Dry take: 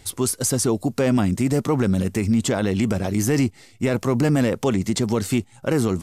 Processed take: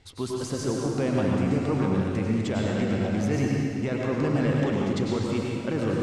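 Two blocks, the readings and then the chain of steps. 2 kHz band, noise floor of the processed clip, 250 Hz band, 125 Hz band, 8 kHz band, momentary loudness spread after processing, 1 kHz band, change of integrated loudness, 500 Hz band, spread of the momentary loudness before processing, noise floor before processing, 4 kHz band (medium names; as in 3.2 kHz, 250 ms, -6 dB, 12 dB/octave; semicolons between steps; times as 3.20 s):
-4.0 dB, -35 dBFS, -4.5 dB, -4.0 dB, -14.5 dB, 4 LU, -3.5 dB, -4.5 dB, -4.0 dB, 4 LU, -52 dBFS, -6.5 dB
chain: low-pass 4.4 kHz 12 dB/octave; plate-style reverb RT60 2.3 s, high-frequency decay 0.85×, pre-delay 85 ms, DRR -3 dB; trim -8.5 dB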